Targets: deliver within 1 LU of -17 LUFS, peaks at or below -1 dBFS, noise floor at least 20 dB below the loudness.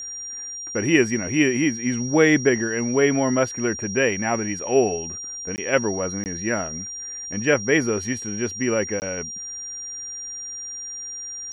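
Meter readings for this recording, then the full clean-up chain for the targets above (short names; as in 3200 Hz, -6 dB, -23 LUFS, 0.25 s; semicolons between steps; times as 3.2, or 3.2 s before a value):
dropouts 3; longest dropout 19 ms; steady tone 5700 Hz; tone level -31 dBFS; loudness -23.0 LUFS; peak -5.0 dBFS; loudness target -17.0 LUFS
-> interpolate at 5.56/6.24/9, 19 ms; notch 5700 Hz, Q 30; gain +6 dB; limiter -1 dBFS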